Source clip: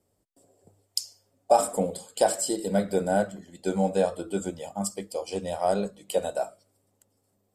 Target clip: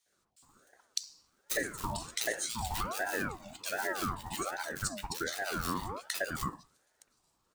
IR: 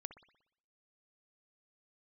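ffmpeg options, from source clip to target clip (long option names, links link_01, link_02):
-filter_complex "[0:a]acrossover=split=240 6600:gain=0.178 1 0.141[link_01][link_02][link_03];[link_01][link_02][link_03]amix=inputs=3:normalize=0,acrusher=bits=5:mode=log:mix=0:aa=0.000001,highshelf=frequency=2100:gain=10.5,acrossover=split=370|1600[link_04][link_05][link_06];[link_05]adelay=60[link_07];[link_04]adelay=120[link_08];[link_08][link_07][link_06]amix=inputs=3:normalize=0,acompressor=threshold=-31dB:ratio=6,aeval=exprs='val(0)*sin(2*PI*790*n/s+790*0.5/1.3*sin(2*PI*1.3*n/s))':channel_layout=same,volume=2.5dB"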